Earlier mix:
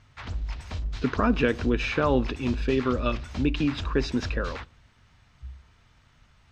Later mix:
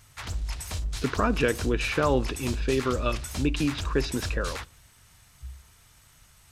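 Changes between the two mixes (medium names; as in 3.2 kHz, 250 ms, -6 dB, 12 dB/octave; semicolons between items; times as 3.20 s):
background: remove distance through air 190 m; master: add peaking EQ 240 Hz -5.5 dB 0.31 oct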